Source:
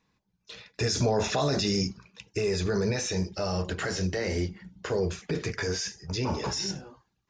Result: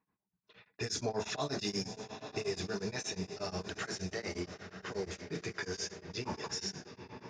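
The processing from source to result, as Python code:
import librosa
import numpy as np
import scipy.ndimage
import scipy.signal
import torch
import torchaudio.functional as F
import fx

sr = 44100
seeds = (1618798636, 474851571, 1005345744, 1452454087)

p1 = fx.peak_eq(x, sr, hz=520.0, db=-9.0, octaves=0.24)
p2 = p1 + 10.0 ** (-20.5 / 20.0) * np.pad(p1, (int(310 * sr / 1000.0), 0))[:len(p1)]
p3 = 10.0 ** (-14.0 / 20.0) * np.tanh(p2 / 10.0 ** (-14.0 / 20.0))
p4 = fx.highpass(p3, sr, hz=210.0, slope=6)
p5 = p4 + fx.echo_diffused(p4, sr, ms=910, feedback_pct=52, wet_db=-9, dry=0)
p6 = fx.env_lowpass(p5, sr, base_hz=1400.0, full_db=-28.0)
p7 = p6 * np.abs(np.cos(np.pi * 8.4 * np.arange(len(p6)) / sr))
y = p7 * librosa.db_to_amplitude(-4.5)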